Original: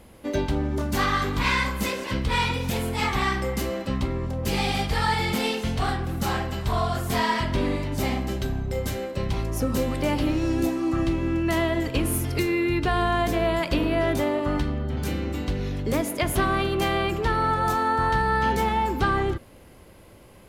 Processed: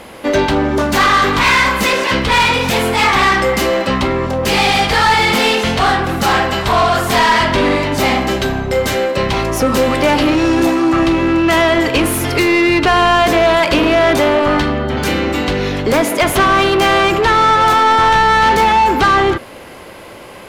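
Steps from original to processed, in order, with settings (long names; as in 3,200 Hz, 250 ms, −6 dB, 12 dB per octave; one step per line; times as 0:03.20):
mid-hump overdrive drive 20 dB, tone 3,500 Hz, clips at −11.5 dBFS
level +7.5 dB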